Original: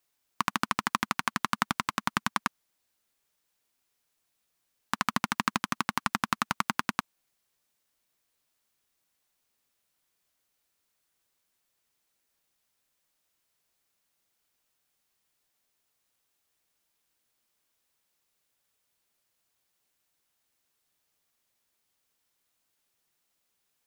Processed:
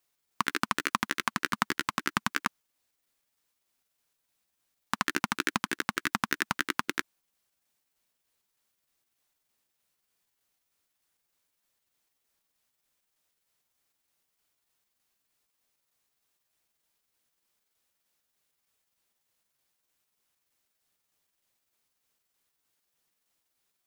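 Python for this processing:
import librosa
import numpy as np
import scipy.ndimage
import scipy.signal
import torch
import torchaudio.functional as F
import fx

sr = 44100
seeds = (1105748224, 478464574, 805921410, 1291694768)

y = fx.pitch_trill(x, sr, semitones=6.0, every_ms=153)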